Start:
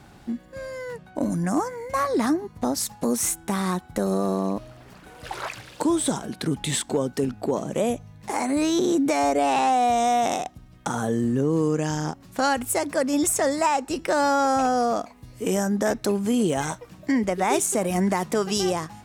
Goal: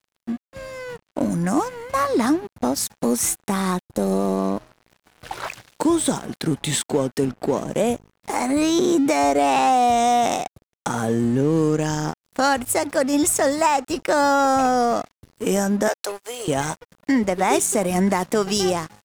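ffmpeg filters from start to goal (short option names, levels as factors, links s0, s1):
-filter_complex "[0:a]asettb=1/sr,asplit=3[s0][s1][s2];[s0]atrim=end=3.854[s3];[s1]atrim=start=3.85:end=4.38,asetpts=PTS-STARTPTS,afade=t=in:d=0.004:c=qsin,afade=t=out:st=0.526:d=0.004:c=qsin,equalizer=f=2000:w=1.8:g=-14.5[s4];[s2]atrim=start=4.376[s5];[s3][s4]acrossfade=d=0.004:c1=hsin:c2=qsin[s6];[s6][s5]acrossfade=d=0.004:c1=qsin:c2=hsin,asettb=1/sr,asplit=3[s7][s8][s9];[s7]atrim=end=15.884[s10];[s8]atrim=start=15.88:end=16.48,asetpts=PTS-STARTPTS,afade=t=in:d=0.004:c=qsin,afade=t=out:st=0.596:d=0.004:c=qsin,highpass=f=510:w=0.5412,highpass=f=510:w=1.3066[s11];[s9]atrim=start=16.476[s12];[s10][s11]acrossfade=d=0.004:c1=hsin:c2=qsin[s13];[s13][s12]acrossfade=d=0.004:c1=qsin:c2=hsin,aeval=exprs='sgn(val(0))*max(abs(val(0))-0.00891,0)':c=same,volume=1.58"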